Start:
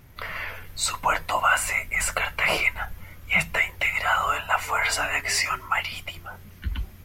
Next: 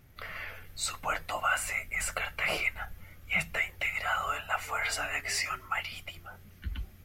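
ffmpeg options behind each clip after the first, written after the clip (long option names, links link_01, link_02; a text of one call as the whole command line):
ffmpeg -i in.wav -af "bandreject=frequency=980:width=6,volume=-7.5dB" out.wav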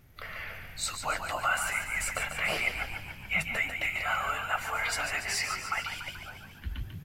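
ffmpeg -i in.wav -filter_complex "[0:a]asplit=9[link_01][link_02][link_03][link_04][link_05][link_06][link_07][link_08][link_09];[link_02]adelay=144,afreqshift=49,volume=-7.5dB[link_10];[link_03]adelay=288,afreqshift=98,volume=-11.8dB[link_11];[link_04]adelay=432,afreqshift=147,volume=-16.1dB[link_12];[link_05]adelay=576,afreqshift=196,volume=-20.4dB[link_13];[link_06]adelay=720,afreqshift=245,volume=-24.7dB[link_14];[link_07]adelay=864,afreqshift=294,volume=-29dB[link_15];[link_08]adelay=1008,afreqshift=343,volume=-33.3dB[link_16];[link_09]adelay=1152,afreqshift=392,volume=-37.6dB[link_17];[link_01][link_10][link_11][link_12][link_13][link_14][link_15][link_16][link_17]amix=inputs=9:normalize=0" out.wav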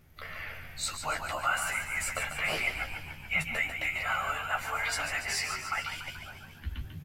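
ffmpeg -i in.wav -filter_complex "[0:a]asplit=2[link_01][link_02];[link_02]adelay=13,volume=-5dB[link_03];[link_01][link_03]amix=inputs=2:normalize=0,volume=-2dB" out.wav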